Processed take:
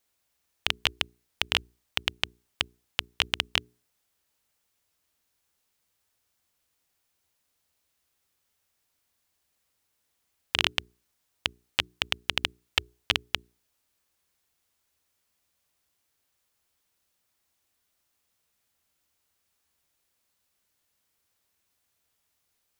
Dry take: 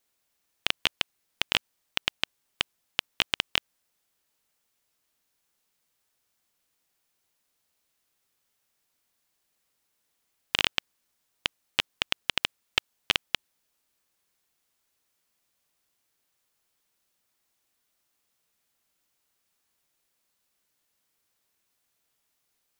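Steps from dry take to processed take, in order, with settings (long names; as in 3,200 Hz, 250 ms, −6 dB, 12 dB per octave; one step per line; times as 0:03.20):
parametric band 73 Hz +10 dB 0.81 octaves
mains-hum notches 60/120/180/240/300/360/420 Hz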